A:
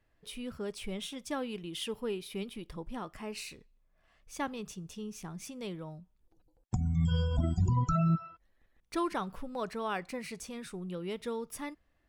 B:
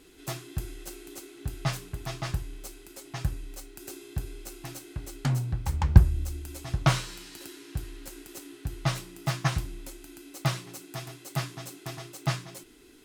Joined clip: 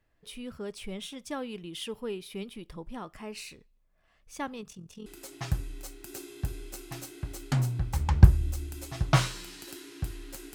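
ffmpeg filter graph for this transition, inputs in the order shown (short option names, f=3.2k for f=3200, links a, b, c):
-filter_complex "[0:a]asplit=3[a][b][c];[a]afade=t=out:st=4.61:d=0.02[d];[b]tremolo=f=43:d=0.667,afade=t=in:st=4.61:d=0.02,afade=t=out:st=5.06:d=0.02[e];[c]afade=t=in:st=5.06:d=0.02[f];[d][e][f]amix=inputs=3:normalize=0,apad=whole_dur=10.54,atrim=end=10.54,atrim=end=5.062[g];[1:a]atrim=start=2.788:end=8.27[h];[g][h]acrossfade=d=0.004:c1=hsin:c2=hsin"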